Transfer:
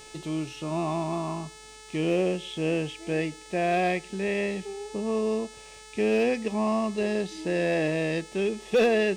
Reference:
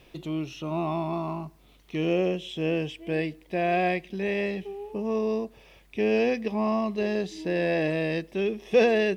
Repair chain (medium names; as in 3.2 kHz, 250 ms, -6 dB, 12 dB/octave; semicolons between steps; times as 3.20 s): clip repair -16.5 dBFS; de-hum 432.5 Hz, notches 22